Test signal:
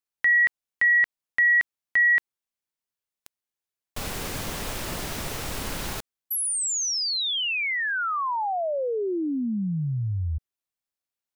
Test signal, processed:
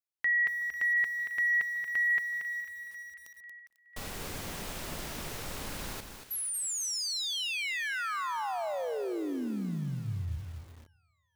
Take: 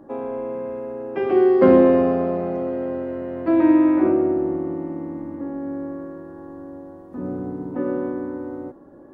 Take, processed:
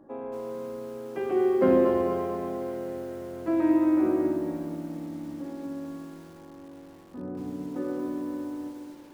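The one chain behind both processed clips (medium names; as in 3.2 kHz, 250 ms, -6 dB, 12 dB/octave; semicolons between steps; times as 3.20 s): hum notches 60/120 Hz; two-band feedback delay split 1.3 kHz, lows 146 ms, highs 495 ms, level -14.5 dB; bit-crushed delay 231 ms, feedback 35%, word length 7-bit, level -6.5 dB; trim -8 dB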